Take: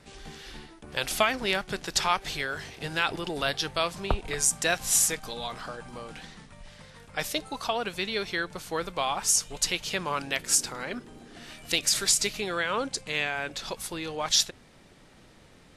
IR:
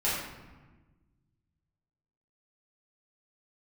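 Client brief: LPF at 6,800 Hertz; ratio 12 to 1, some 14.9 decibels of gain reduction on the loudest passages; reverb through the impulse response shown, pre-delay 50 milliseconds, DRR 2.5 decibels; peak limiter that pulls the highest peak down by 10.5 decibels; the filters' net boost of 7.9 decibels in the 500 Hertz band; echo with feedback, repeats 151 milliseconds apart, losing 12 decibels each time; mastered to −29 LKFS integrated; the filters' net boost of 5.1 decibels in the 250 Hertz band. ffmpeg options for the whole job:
-filter_complex "[0:a]lowpass=6800,equalizer=frequency=250:width_type=o:gain=3.5,equalizer=frequency=500:width_type=o:gain=9,acompressor=threshold=-30dB:ratio=12,alimiter=level_in=1.5dB:limit=-24dB:level=0:latency=1,volume=-1.5dB,aecho=1:1:151|302|453:0.251|0.0628|0.0157,asplit=2[link_01][link_02];[1:a]atrim=start_sample=2205,adelay=50[link_03];[link_02][link_03]afir=irnorm=-1:irlink=0,volume=-12.5dB[link_04];[link_01][link_04]amix=inputs=2:normalize=0,volume=6dB"

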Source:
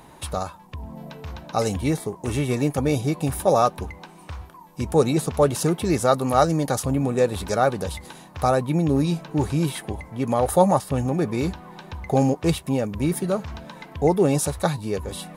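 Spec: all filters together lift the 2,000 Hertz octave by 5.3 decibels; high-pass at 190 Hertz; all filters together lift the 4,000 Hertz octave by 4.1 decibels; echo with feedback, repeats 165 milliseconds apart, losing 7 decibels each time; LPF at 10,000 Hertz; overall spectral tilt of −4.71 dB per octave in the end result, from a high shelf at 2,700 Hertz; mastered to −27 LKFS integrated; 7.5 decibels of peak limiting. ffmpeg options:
ffmpeg -i in.wav -af "highpass=190,lowpass=10000,equalizer=frequency=2000:width_type=o:gain=8,highshelf=frequency=2700:gain=-8,equalizer=frequency=4000:width_type=o:gain=9,alimiter=limit=-11dB:level=0:latency=1,aecho=1:1:165|330|495|660|825:0.447|0.201|0.0905|0.0407|0.0183,volume=-2.5dB" out.wav

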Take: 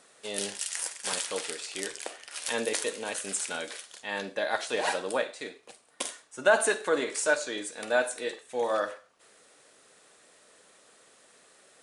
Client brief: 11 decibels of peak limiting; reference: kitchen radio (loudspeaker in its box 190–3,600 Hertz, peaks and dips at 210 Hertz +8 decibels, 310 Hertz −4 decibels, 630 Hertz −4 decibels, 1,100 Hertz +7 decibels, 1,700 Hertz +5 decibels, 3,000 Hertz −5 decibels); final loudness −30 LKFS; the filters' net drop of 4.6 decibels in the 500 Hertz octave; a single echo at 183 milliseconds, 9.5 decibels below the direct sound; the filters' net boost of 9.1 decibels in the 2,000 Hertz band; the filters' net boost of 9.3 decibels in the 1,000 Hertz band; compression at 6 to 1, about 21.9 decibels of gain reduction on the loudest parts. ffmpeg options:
ffmpeg -i in.wav -af "equalizer=frequency=500:width_type=o:gain=-6,equalizer=frequency=1000:width_type=o:gain=8.5,equalizer=frequency=2000:width_type=o:gain=4,acompressor=threshold=-40dB:ratio=6,alimiter=level_in=8.5dB:limit=-24dB:level=0:latency=1,volume=-8.5dB,highpass=190,equalizer=frequency=210:width_type=q:width=4:gain=8,equalizer=frequency=310:width_type=q:width=4:gain=-4,equalizer=frequency=630:width_type=q:width=4:gain=-4,equalizer=frequency=1100:width_type=q:width=4:gain=7,equalizer=frequency=1700:width_type=q:width=4:gain=5,equalizer=frequency=3000:width_type=q:width=4:gain=-5,lowpass=frequency=3600:width=0.5412,lowpass=frequency=3600:width=1.3066,aecho=1:1:183:0.335,volume=14.5dB" out.wav

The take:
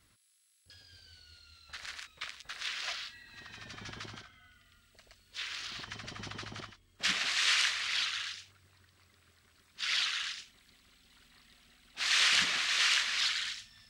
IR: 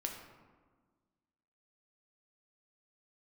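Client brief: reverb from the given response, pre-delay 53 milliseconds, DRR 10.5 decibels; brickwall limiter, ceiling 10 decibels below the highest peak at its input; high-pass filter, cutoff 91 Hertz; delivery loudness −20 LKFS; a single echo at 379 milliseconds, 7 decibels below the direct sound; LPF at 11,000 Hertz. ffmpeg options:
-filter_complex "[0:a]highpass=91,lowpass=11000,alimiter=limit=-23.5dB:level=0:latency=1,aecho=1:1:379:0.447,asplit=2[link_01][link_02];[1:a]atrim=start_sample=2205,adelay=53[link_03];[link_02][link_03]afir=irnorm=-1:irlink=0,volume=-10.5dB[link_04];[link_01][link_04]amix=inputs=2:normalize=0,volume=14dB"

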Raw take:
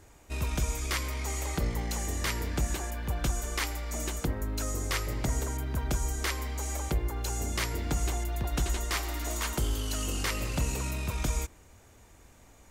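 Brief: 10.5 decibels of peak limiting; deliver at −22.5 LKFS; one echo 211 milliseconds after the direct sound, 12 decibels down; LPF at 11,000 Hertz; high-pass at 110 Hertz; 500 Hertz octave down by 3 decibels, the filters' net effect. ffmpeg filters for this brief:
ffmpeg -i in.wav -af "highpass=110,lowpass=11000,equalizer=frequency=500:width_type=o:gain=-4,alimiter=level_in=4.5dB:limit=-24dB:level=0:latency=1,volume=-4.5dB,aecho=1:1:211:0.251,volume=15.5dB" out.wav

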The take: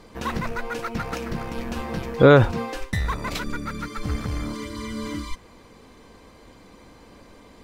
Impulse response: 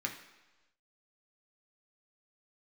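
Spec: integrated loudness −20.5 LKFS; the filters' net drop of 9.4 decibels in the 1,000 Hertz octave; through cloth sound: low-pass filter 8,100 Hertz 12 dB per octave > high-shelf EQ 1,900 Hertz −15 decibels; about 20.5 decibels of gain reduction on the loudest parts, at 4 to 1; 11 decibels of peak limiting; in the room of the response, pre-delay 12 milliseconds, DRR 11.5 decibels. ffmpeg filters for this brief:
-filter_complex "[0:a]equalizer=frequency=1000:width_type=o:gain=-8,acompressor=threshold=-35dB:ratio=4,alimiter=level_in=8.5dB:limit=-24dB:level=0:latency=1,volume=-8.5dB,asplit=2[link_01][link_02];[1:a]atrim=start_sample=2205,adelay=12[link_03];[link_02][link_03]afir=irnorm=-1:irlink=0,volume=-14.5dB[link_04];[link_01][link_04]amix=inputs=2:normalize=0,lowpass=8100,highshelf=frequency=1900:gain=-15,volume=24dB"

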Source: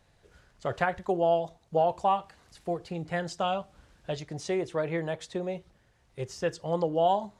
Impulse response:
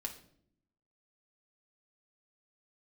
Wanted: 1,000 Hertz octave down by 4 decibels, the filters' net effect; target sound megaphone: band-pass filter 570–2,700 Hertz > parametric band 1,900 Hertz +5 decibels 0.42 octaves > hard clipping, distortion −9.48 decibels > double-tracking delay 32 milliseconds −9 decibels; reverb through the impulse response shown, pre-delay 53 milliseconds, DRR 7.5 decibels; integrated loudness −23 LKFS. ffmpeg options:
-filter_complex "[0:a]equalizer=frequency=1000:width_type=o:gain=-4.5,asplit=2[link_01][link_02];[1:a]atrim=start_sample=2205,adelay=53[link_03];[link_02][link_03]afir=irnorm=-1:irlink=0,volume=-6.5dB[link_04];[link_01][link_04]amix=inputs=2:normalize=0,highpass=570,lowpass=2700,equalizer=frequency=1900:width_type=o:width=0.42:gain=5,asoftclip=type=hard:threshold=-28dB,asplit=2[link_05][link_06];[link_06]adelay=32,volume=-9dB[link_07];[link_05][link_07]amix=inputs=2:normalize=0,volume=13dB"

